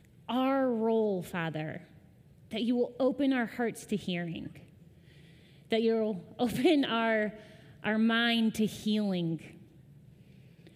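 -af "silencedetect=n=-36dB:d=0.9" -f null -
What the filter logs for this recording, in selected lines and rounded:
silence_start: 4.47
silence_end: 5.72 | silence_duration: 1.25
silence_start: 9.36
silence_end: 10.75 | silence_duration: 1.39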